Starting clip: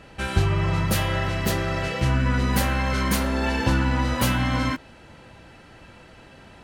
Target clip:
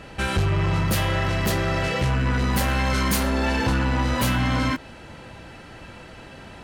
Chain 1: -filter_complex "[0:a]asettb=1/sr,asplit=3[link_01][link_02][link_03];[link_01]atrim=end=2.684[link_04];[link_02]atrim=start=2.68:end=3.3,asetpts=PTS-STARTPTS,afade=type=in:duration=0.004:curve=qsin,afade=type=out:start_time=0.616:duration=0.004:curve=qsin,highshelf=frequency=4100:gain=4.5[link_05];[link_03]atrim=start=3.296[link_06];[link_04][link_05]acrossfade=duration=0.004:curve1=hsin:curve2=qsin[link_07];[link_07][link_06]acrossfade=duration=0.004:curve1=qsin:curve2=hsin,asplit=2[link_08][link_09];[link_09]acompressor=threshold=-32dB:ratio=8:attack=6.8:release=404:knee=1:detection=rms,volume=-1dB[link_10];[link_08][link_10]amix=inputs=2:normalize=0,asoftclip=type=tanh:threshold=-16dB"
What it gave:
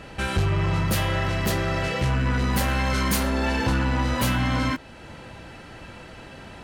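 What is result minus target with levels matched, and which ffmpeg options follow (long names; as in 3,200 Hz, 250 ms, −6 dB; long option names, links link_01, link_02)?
downward compressor: peak gain reduction +8 dB
-filter_complex "[0:a]asettb=1/sr,asplit=3[link_01][link_02][link_03];[link_01]atrim=end=2.684[link_04];[link_02]atrim=start=2.68:end=3.3,asetpts=PTS-STARTPTS,afade=type=in:duration=0.004:curve=qsin,afade=type=out:start_time=0.616:duration=0.004:curve=qsin,highshelf=frequency=4100:gain=4.5[link_05];[link_03]atrim=start=3.296[link_06];[link_04][link_05]acrossfade=duration=0.004:curve1=hsin:curve2=qsin[link_07];[link_07][link_06]acrossfade=duration=0.004:curve1=qsin:curve2=hsin,asplit=2[link_08][link_09];[link_09]acompressor=threshold=-23dB:ratio=8:attack=6.8:release=404:knee=1:detection=rms,volume=-1dB[link_10];[link_08][link_10]amix=inputs=2:normalize=0,asoftclip=type=tanh:threshold=-16dB"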